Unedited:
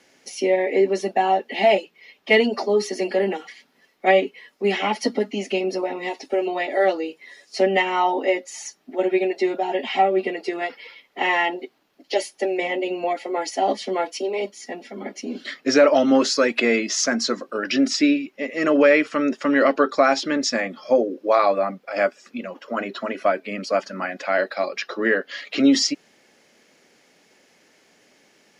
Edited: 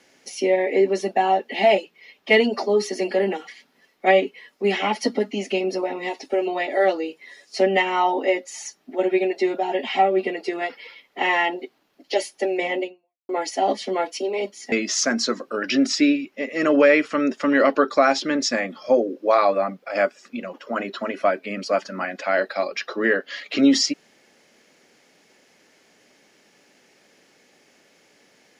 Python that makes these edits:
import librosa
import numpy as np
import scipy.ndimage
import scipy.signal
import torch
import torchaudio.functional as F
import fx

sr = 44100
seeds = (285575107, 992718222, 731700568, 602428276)

y = fx.edit(x, sr, fx.fade_out_span(start_s=12.83, length_s=0.46, curve='exp'),
    fx.cut(start_s=14.72, length_s=2.01), tone=tone)